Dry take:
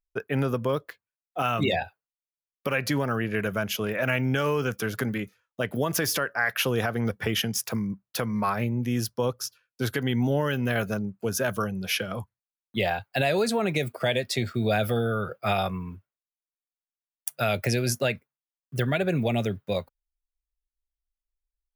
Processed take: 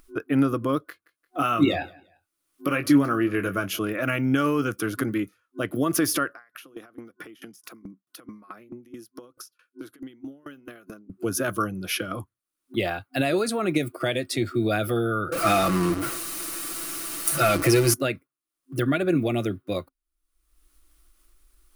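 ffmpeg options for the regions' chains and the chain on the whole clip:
-filter_complex "[0:a]asettb=1/sr,asplit=3[a][b][c];[a]atrim=end=0.884[d];[b]atrim=start=0.88:end=3.79,asetpts=PTS-STARTPTS,afade=t=in:d=0.004:c=qsin,afade=t=out:st=2.906:d=0.004:c=qsin,asplit=2[e][f];[f]adelay=21,volume=-8dB[g];[e][g]amix=inputs=2:normalize=0,atrim=end_sample=128331,aecho=1:1:173|346:0.0708|0.0127,atrim=end_sample=128331[h];[c]atrim=start=3.786[i];[d][h]acrossfade=d=0.004:c1=hsin:c2=qsin[j];[j][i]acrossfade=d=0.004:c1=qsin:c2=hsin,asettb=1/sr,asplit=3[k][l][m];[k]atrim=end=6.334[n];[l]atrim=start=6.33:end=11.1,asetpts=PTS-STARTPTS,afade=t=in:d=0.004:c=qsin,afade=t=out:st=4.766:d=0.004:c=qsin,highpass=f=160:w=0.5412,highpass=f=160:w=1.3066,acompressor=threshold=-37dB:ratio=6:attack=3.2:release=140:knee=1:detection=peak,aeval=exprs='val(0)*pow(10,-30*if(lt(mod(4.6*n/s,1),2*abs(4.6)/1000),1-mod(4.6*n/s,1)/(2*abs(4.6)/1000),(mod(4.6*n/s,1)-2*abs(4.6)/1000)/(1-2*abs(4.6)/1000))/20)':c=same[o];[m]atrim=start=11.096[p];[n][o]acrossfade=d=0.004:c1=hsin:c2=qsin[q];[q][p]acrossfade=d=0.004:c1=qsin:c2=hsin,asettb=1/sr,asplit=3[r][s][t];[r]atrim=end=15.324[u];[s]atrim=start=15.32:end=17.94,asetpts=PTS-STARTPTS,afade=t=in:d=0.004:c=qsin,afade=t=out:st=2.616:d=0.004:c=qsin,aeval=exprs='val(0)+0.5*0.0708*sgn(val(0))':c=same,bandreject=f=3.4k:w=15,aecho=1:1:6:0.65,atrim=end_sample=115542[v];[t]atrim=start=17.936[w];[u][v]acrossfade=d=0.004:c1=hsin:c2=qsin[x];[x][w]acrossfade=d=0.004:c1=qsin:c2=hsin,superequalizer=6b=3.98:9b=0.708:10b=2:16b=2,acompressor=mode=upward:threshold=-33dB:ratio=2.5,volume=-1.5dB"

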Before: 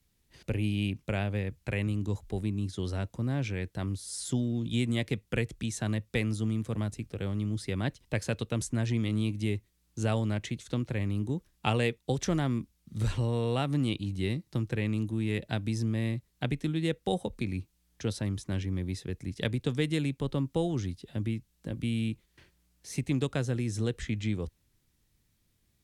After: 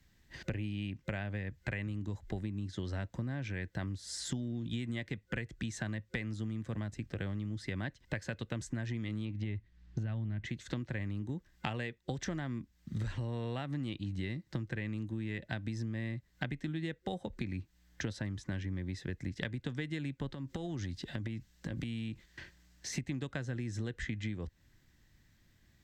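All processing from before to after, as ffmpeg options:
-filter_complex "[0:a]asettb=1/sr,asplit=3[a][b][c];[a]atrim=end=9.254[d];[b]atrim=start=9.25:end=10.46,asetpts=PTS-STARTPTS,afade=t=in:d=0.004:c=qsin,afade=t=out:st=1.206:d=0.004:c=qsin,lowpass=4k,asubboost=boost=11.5:cutoff=230,acompressor=threshold=-24dB:ratio=6:attack=3.2:release=140:knee=1:detection=peak[e];[c]atrim=start=10.456[f];[d][e]acrossfade=d=0.004:c1=hsin:c2=qsin[g];[g][f]acrossfade=d=0.004:c1=qsin:c2=hsin,asettb=1/sr,asplit=3[h][i][j];[h]atrim=end=20.314[k];[i]atrim=start=20.31:end=22.93,asetpts=PTS-STARTPTS,afade=t=in:d=0.004:c=qsin,afade=t=out:st=2.616:d=0.004:c=qsin,equalizer=f=5.8k:w=0.65:g=4.5,acompressor=threshold=-37dB:ratio=10:attack=3.2:release=140:knee=1:detection=peak[l];[j]atrim=start=22.926[m];[k][l]acrossfade=d=0.004:c1=hsin:c2=qsin[n];[n][m]acrossfade=d=0.004:c1=qsin:c2=hsin,superequalizer=7b=0.631:11b=2.24:16b=0.355,acompressor=threshold=-40dB:ratio=10,highshelf=f=8.3k:g=-10,volume=6dB"

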